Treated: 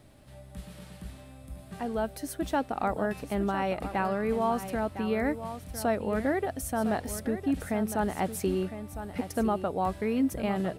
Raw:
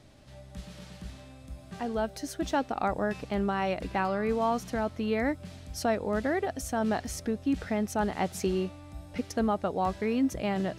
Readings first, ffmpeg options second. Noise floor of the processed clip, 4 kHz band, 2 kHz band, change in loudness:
−49 dBFS, −3.0 dB, −1.0 dB, 0.0 dB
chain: -filter_complex "[0:a]highshelf=frequency=4400:gain=-7.5,aexciter=amount=4.1:drive=6.3:freq=8400,asplit=2[link_01][link_02];[link_02]aecho=0:1:1007:0.282[link_03];[link_01][link_03]amix=inputs=2:normalize=0"

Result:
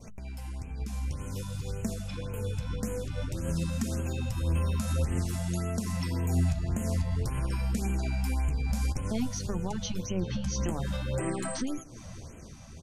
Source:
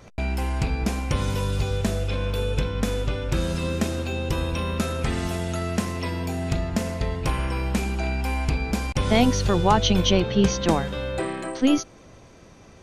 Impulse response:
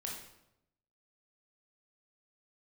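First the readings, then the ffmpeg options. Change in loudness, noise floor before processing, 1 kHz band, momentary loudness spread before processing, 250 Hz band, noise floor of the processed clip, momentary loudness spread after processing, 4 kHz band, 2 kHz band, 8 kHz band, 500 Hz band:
−7.5 dB, −49 dBFS, −14.5 dB, 8 LU, −9.0 dB, −46 dBFS, 10 LU, −14.0 dB, −12.0 dB, −5.0 dB, −12.0 dB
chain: -af "bass=frequency=250:gain=9,treble=frequency=4000:gain=9,acompressor=threshold=-26dB:ratio=5,alimiter=level_in=1.5dB:limit=-24dB:level=0:latency=1:release=227,volume=-1.5dB,flanger=delay=4.4:depth=9.9:regen=48:speed=0.52:shape=sinusoidal,aecho=1:1:162:0.0708,dynaudnorm=framelen=130:gausssize=21:maxgain=9dB,adynamicequalizer=threshold=0.00178:dfrequency=3300:dqfactor=1.7:tfrequency=3300:tqfactor=1.7:attack=5:release=100:ratio=0.375:range=2:mode=cutabove:tftype=bell,bandreject=frequency=50:width_type=h:width=6,bandreject=frequency=100:width_type=h:width=6,bandreject=frequency=150:width_type=h:width=6,bandreject=frequency=200:width_type=h:width=6,afftfilt=real='re*(1-between(b*sr/1024,330*pow(4700/330,0.5+0.5*sin(2*PI*1.8*pts/sr))/1.41,330*pow(4700/330,0.5+0.5*sin(2*PI*1.8*pts/sr))*1.41))':imag='im*(1-between(b*sr/1024,330*pow(4700/330,0.5+0.5*sin(2*PI*1.8*pts/sr))/1.41,330*pow(4700/330,0.5+0.5*sin(2*PI*1.8*pts/sr))*1.41))':win_size=1024:overlap=0.75"

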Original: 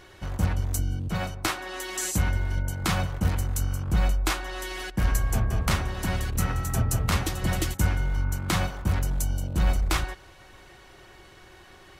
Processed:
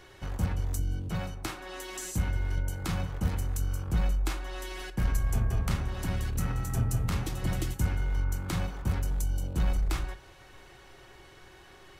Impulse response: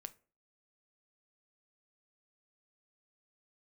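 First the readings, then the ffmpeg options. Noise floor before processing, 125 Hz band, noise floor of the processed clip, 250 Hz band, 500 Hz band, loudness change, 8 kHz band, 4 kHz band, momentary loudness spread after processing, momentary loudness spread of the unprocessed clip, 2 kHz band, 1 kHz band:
−51 dBFS, −4.0 dB, −53 dBFS, −4.5 dB, −5.5 dB, −4.5 dB, −8.0 dB, −8.5 dB, 8 LU, 4 LU, −8.5 dB, −8.0 dB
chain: -filter_complex "[1:a]atrim=start_sample=2205[link_01];[0:a][link_01]afir=irnorm=-1:irlink=0,asplit=2[link_02][link_03];[link_03]aeval=exprs='clip(val(0),-1,0.0188)':channel_layout=same,volume=-9dB[link_04];[link_02][link_04]amix=inputs=2:normalize=0,acrossover=split=330[link_05][link_06];[link_06]acompressor=threshold=-41dB:ratio=2[link_07];[link_05][link_07]amix=inputs=2:normalize=0"

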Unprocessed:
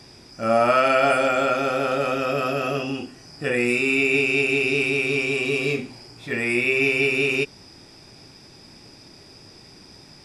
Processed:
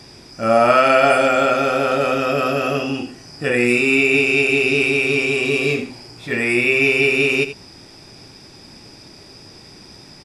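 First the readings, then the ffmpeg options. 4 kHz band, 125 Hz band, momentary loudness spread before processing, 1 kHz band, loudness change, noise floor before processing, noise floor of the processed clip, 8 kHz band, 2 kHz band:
+5.0 dB, +4.0 dB, 11 LU, +5.0 dB, +4.5 dB, −48 dBFS, −43 dBFS, +5.0 dB, +5.0 dB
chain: -af "aecho=1:1:82:0.251,volume=4.5dB"

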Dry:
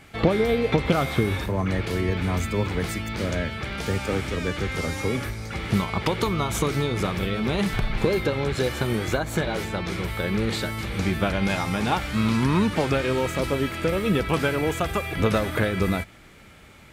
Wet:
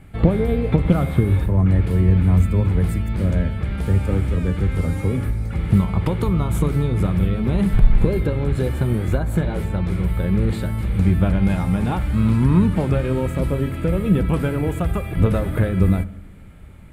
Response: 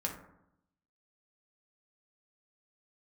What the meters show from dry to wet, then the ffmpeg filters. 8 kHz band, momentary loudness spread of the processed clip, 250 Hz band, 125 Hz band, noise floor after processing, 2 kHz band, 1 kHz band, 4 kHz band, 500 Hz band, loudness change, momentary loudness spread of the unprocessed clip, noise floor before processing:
can't be measured, 5 LU, +5.0 dB, +9.5 dB, −38 dBFS, −6.0 dB, −3.5 dB, −9.5 dB, −0.5 dB, +5.0 dB, 6 LU, −48 dBFS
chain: -filter_complex "[0:a]aemphasis=mode=reproduction:type=riaa,aexciter=amount=6.5:drive=6.8:freq=8200,asplit=2[link_01][link_02];[1:a]atrim=start_sample=2205[link_03];[link_02][link_03]afir=irnorm=-1:irlink=0,volume=-11dB[link_04];[link_01][link_04]amix=inputs=2:normalize=0,volume=-5.5dB"

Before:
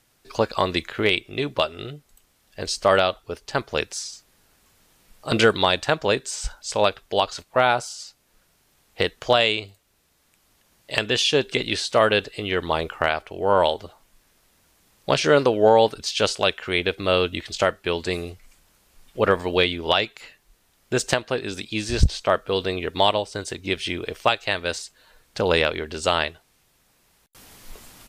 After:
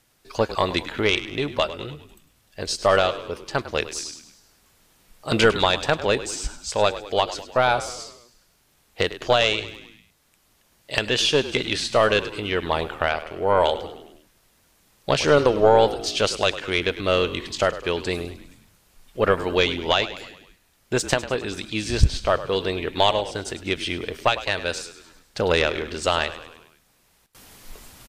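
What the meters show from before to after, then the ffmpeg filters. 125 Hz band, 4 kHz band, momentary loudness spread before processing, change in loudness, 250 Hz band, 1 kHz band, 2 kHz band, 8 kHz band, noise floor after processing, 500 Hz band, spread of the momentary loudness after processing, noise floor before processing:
+1.0 dB, −0.5 dB, 12 LU, 0.0 dB, −0.5 dB, 0.0 dB, 0.0 dB, +0.5 dB, −63 dBFS, 0.0 dB, 13 LU, −64 dBFS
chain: -filter_complex "[0:a]aeval=exprs='0.631*(cos(1*acos(clip(val(0)/0.631,-1,1)))-cos(1*PI/2))+0.112*(cos(2*acos(clip(val(0)/0.631,-1,1)))-cos(2*PI/2))':channel_layout=same,asplit=6[link_01][link_02][link_03][link_04][link_05][link_06];[link_02]adelay=102,afreqshift=-49,volume=-14dB[link_07];[link_03]adelay=204,afreqshift=-98,volume=-19.4dB[link_08];[link_04]adelay=306,afreqshift=-147,volume=-24.7dB[link_09];[link_05]adelay=408,afreqshift=-196,volume=-30.1dB[link_10];[link_06]adelay=510,afreqshift=-245,volume=-35.4dB[link_11];[link_01][link_07][link_08][link_09][link_10][link_11]amix=inputs=6:normalize=0"

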